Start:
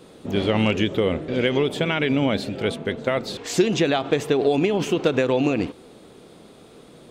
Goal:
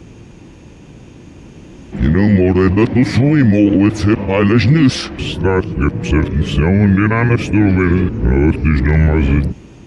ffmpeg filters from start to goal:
-af "areverse,equalizer=f=63:w=0.46:g=15,dynaudnorm=f=320:g=9:m=11.5dB,asetrate=31752,aresample=44100,alimiter=level_in=6dB:limit=-1dB:release=50:level=0:latency=1,volume=-1dB"

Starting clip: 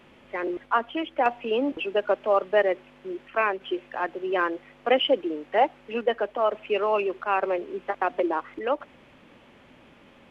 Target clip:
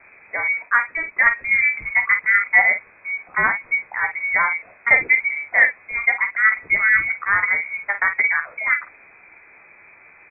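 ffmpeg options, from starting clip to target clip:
-filter_complex "[0:a]asplit=2[a][b];[b]aecho=0:1:14|50:0.422|0.355[c];[a][c]amix=inputs=2:normalize=0,lowpass=f=2.2k:t=q:w=0.5098,lowpass=f=2.2k:t=q:w=0.6013,lowpass=f=2.2k:t=q:w=0.9,lowpass=f=2.2k:t=q:w=2.563,afreqshift=-2600,volume=5dB"

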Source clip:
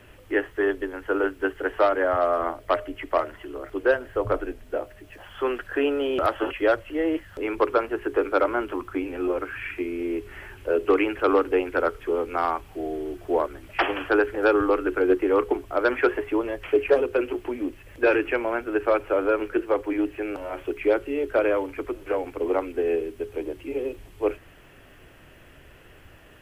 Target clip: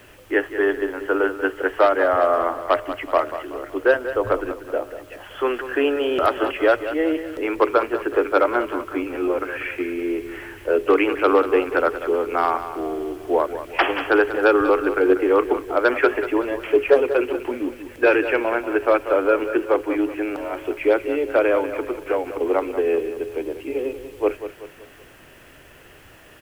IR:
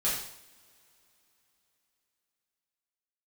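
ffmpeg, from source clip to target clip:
-filter_complex "[0:a]lowshelf=f=150:g=-8.5,acrusher=bits=9:mix=0:aa=0.000001,asplit=2[a][b];[b]aecho=0:1:189|378|567|756:0.266|0.117|0.0515|0.0227[c];[a][c]amix=inputs=2:normalize=0,volume=4.5dB"

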